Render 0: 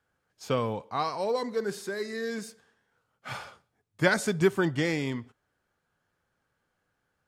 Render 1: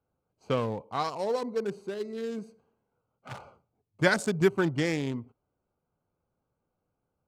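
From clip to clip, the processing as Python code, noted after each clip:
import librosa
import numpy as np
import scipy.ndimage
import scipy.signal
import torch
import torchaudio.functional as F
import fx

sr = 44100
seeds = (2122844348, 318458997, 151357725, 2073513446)

y = fx.wiener(x, sr, points=25)
y = fx.peak_eq(y, sr, hz=7800.0, db=4.0, octaves=1.4)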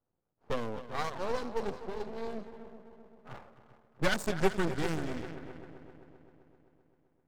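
y = fx.echo_heads(x, sr, ms=130, heads='second and third', feedback_pct=54, wet_db=-14)
y = fx.env_lowpass(y, sr, base_hz=1100.0, full_db=-24.0)
y = np.maximum(y, 0.0)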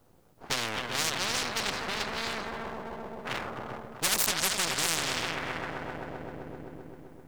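y = fx.spectral_comp(x, sr, ratio=10.0)
y = y * 10.0 ** (4.5 / 20.0)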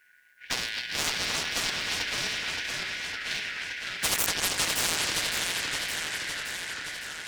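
y = fx.band_shuffle(x, sr, order='4123')
y = fx.echo_warbled(y, sr, ms=565, feedback_pct=68, rate_hz=2.8, cents=211, wet_db=-4.5)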